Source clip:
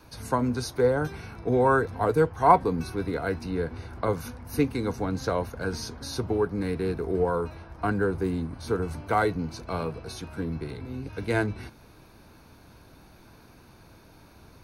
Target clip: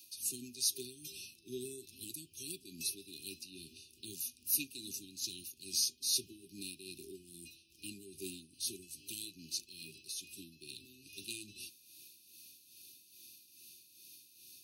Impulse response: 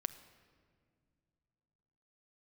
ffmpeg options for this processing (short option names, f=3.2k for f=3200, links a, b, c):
-af "afftfilt=real='re*(1-between(b*sr/4096,400,2400))':imag='im*(1-between(b*sr/4096,400,2400))':win_size=4096:overlap=0.75,tremolo=f=2.4:d=0.62,aderivative,volume=9.5dB"